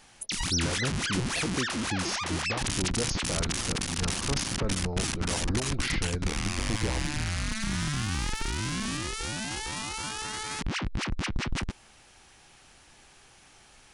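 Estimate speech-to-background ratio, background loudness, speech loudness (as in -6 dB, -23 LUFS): -4.0 dB, -31.0 LUFS, -35.0 LUFS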